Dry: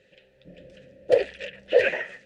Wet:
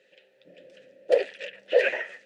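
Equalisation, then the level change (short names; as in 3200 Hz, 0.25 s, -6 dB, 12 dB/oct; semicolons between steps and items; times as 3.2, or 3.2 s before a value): HPF 340 Hz 12 dB/oct; -1.0 dB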